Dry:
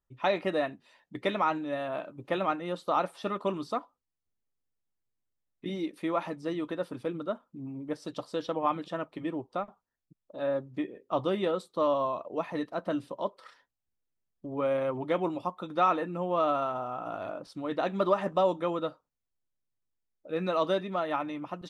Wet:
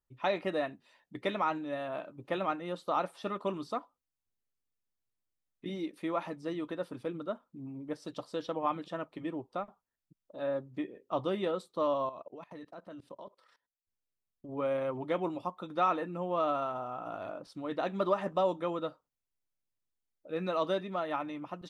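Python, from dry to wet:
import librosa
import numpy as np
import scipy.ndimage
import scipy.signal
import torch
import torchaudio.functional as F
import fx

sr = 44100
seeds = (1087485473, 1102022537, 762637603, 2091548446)

y = fx.level_steps(x, sr, step_db=21, at=(12.09, 14.49))
y = y * librosa.db_to_amplitude(-3.5)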